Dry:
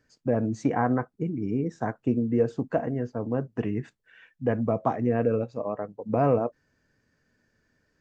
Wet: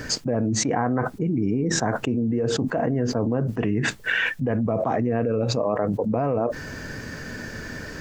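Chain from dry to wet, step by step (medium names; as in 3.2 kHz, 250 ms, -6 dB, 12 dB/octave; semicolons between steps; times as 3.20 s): level flattener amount 100%; trim -4.5 dB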